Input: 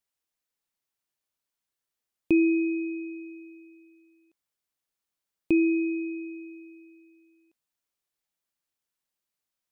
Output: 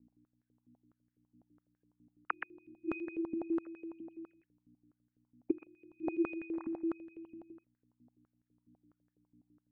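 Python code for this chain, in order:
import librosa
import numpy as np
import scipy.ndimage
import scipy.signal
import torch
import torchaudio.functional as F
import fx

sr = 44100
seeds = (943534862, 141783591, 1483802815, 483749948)

y = fx.sine_speech(x, sr)
y = fx.gate_flip(y, sr, shuts_db=-22.0, range_db=-36)
y = fx.dynamic_eq(y, sr, hz=460.0, q=1.2, threshold_db=-48.0, ratio=4.0, max_db=-5)
y = fx.add_hum(y, sr, base_hz=60, snr_db=17)
y = fx.vibrato(y, sr, rate_hz=0.41, depth_cents=6.1)
y = y + 10.0 ** (-6.0 / 20.0) * np.pad(y, (int(124 * sr / 1000.0), 0))[:len(y)]
y = fx.filter_held_bandpass(y, sr, hz=12.0, low_hz=260.0, high_hz=1700.0)
y = y * librosa.db_to_amplitude(12.0)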